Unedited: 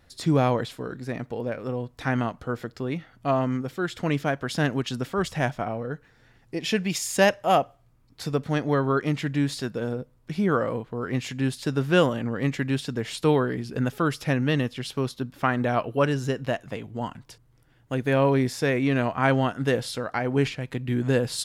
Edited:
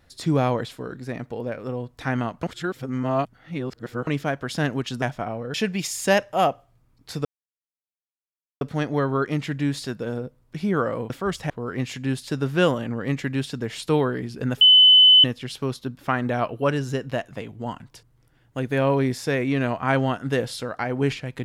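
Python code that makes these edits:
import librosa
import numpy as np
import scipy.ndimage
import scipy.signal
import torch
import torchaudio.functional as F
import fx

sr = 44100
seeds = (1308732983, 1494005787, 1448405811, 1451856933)

y = fx.edit(x, sr, fx.reverse_span(start_s=2.43, length_s=1.64),
    fx.move(start_s=5.02, length_s=0.4, to_s=10.85),
    fx.cut(start_s=5.94, length_s=0.71),
    fx.insert_silence(at_s=8.36, length_s=1.36),
    fx.bleep(start_s=13.96, length_s=0.63, hz=3020.0, db=-9.0), tone=tone)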